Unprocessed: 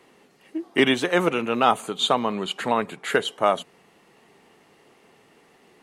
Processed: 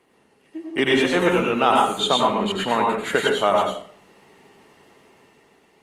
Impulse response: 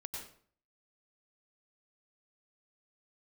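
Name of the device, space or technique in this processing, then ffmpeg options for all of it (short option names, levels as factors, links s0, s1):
speakerphone in a meeting room: -filter_complex "[1:a]atrim=start_sample=2205[s0];[0:a][s0]afir=irnorm=-1:irlink=0,dynaudnorm=f=200:g=9:m=1.88" -ar 48000 -c:a libopus -b:a 32k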